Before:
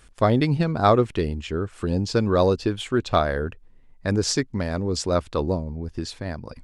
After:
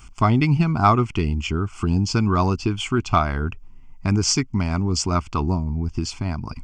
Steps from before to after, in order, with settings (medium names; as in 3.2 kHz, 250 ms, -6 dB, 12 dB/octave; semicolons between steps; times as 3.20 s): dynamic bell 1.9 kHz, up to +4 dB, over -38 dBFS, Q 1.7; in parallel at +2 dB: compression, threshold -29 dBFS, peak gain reduction 16.5 dB; on the sum: static phaser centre 2.6 kHz, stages 8; trim +2.5 dB